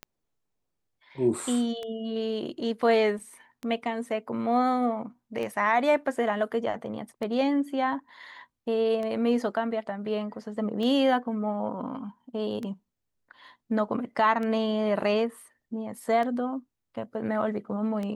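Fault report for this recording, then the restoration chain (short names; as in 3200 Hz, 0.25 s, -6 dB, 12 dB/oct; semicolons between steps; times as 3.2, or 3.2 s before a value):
tick 33 1/3 rpm -22 dBFS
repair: de-click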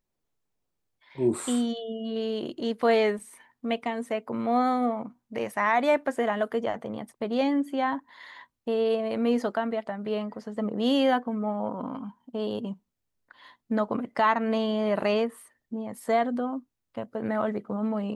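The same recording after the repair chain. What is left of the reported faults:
none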